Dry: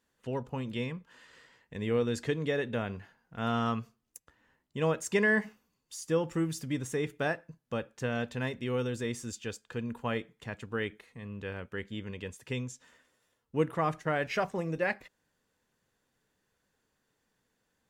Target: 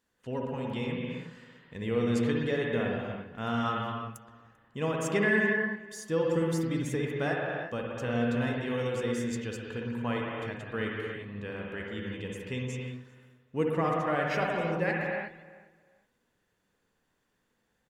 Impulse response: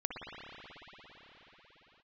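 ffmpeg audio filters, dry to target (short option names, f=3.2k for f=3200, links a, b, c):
-filter_complex "[0:a]asplit=2[a][b];[b]adelay=392,lowpass=f=2.7k:p=1,volume=-19.5dB,asplit=2[c][d];[d]adelay=392,lowpass=f=2.7k:p=1,volume=0.24[e];[a][c][e]amix=inputs=3:normalize=0[f];[1:a]atrim=start_sample=2205,afade=t=out:st=0.42:d=0.01,atrim=end_sample=18963[g];[f][g]afir=irnorm=-1:irlink=0"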